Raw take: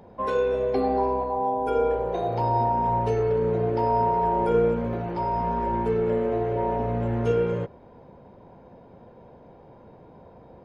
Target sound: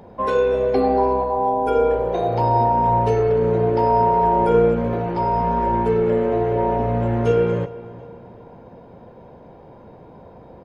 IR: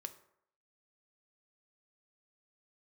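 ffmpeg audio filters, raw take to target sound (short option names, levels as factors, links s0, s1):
-filter_complex "[0:a]asplit=2[s0][s1];[s1]adelay=366,lowpass=f=3700:p=1,volume=0.119,asplit=2[s2][s3];[s3]adelay=366,lowpass=f=3700:p=1,volume=0.48,asplit=2[s4][s5];[s5]adelay=366,lowpass=f=3700:p=1,volume=0.48,asplit=2[s6][s7];[s7]adelay=366,lowpass=f=3700:p=1,volume=0.48[s8];[s0][s2][s4][s6][s8]amix=inputs=5:normalize=0,volume=1.88"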